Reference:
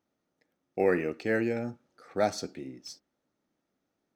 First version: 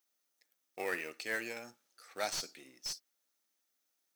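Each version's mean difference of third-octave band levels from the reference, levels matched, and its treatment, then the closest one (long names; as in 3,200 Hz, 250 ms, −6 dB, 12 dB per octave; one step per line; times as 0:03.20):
11.0 dB: gain on one half-wave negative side −3 dB
first difference
slew-rate limiting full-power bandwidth 28 Hz
level +10.5 dB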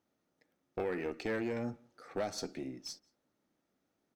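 5.0 dB: downward compressor 12 to 1, threshold −29 dBFS, peak gain reduction 10.5 dB
tube saturation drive 28 dB, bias 0.35
slap from a distant wall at 30 metres, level −28 dB
level +1 dB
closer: second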